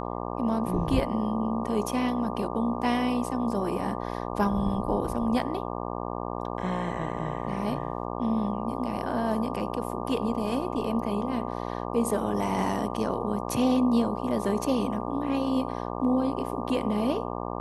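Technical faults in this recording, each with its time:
buzz 60 Hz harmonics 20 -33 dBFS

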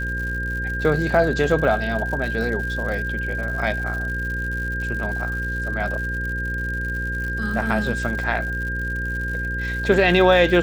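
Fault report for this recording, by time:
buzz 60 Hz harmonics 9 -28 dBFS
crackle 130 per s -30 dBFS
whine 1.6 kHz -26 dBFS

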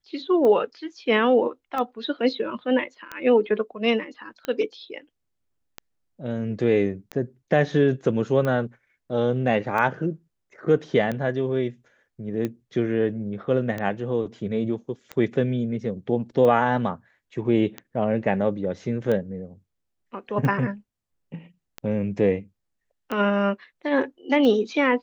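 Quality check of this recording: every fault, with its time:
tick 45 rpm -16 dBFS

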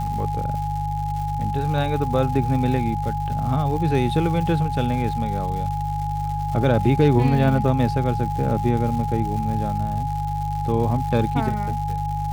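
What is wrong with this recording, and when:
crackle 270 per s -31 dBFS
hum 50 Hz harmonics 3 -27 dBFS
whine 830 Hz -26 dBFS

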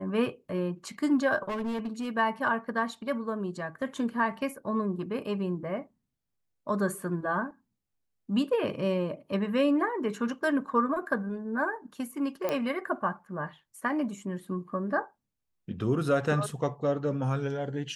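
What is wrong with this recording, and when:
1.48–2.08 s: clipped -29 dBFS
12.49 s: pop -16 dBFS

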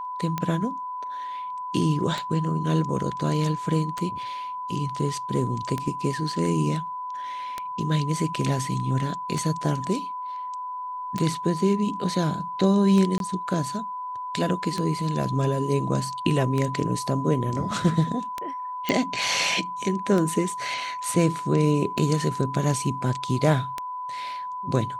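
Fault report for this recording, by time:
tick 33 1/3 rpm -13 dBFS
whine 1 kHz -30 dBFS
13.18–13.20 s: dropout 22 ms
18.89 s: pop -10 dBFS

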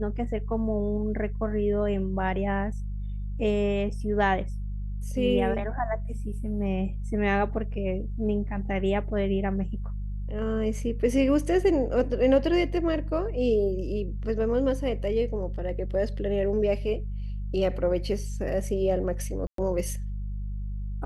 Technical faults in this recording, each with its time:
hum 50 Hz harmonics 4 -32 dBFS
19.47–19.58 s: dropout 113 ms

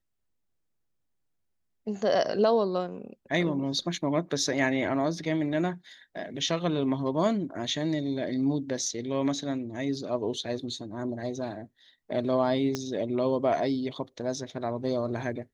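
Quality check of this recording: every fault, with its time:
12.75 s: pop -16 dBFS

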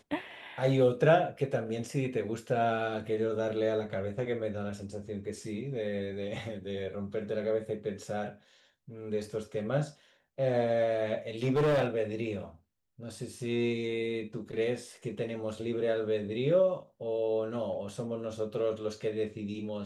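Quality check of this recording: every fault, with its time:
11.43–11.86 s: clipped -23 dBFS

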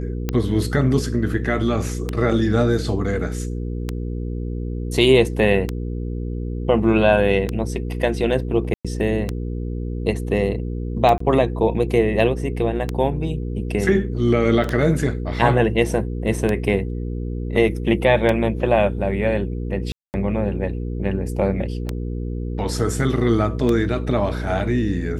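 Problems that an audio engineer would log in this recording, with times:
hum 60 Hz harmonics 8 -26 dBFS
tick 33 1/3 rpm -9 dBFS
8.74–8.85 s: dropout 106 ms
11.18–11.20 s: dropout 24 ms
14.64 s: dropout 3.2 ms
19.92–20.14 s: dropout 219 ms

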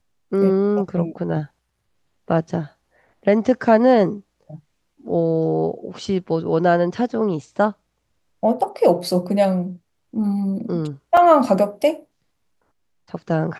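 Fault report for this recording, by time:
11.17 s: dropout 4 ms

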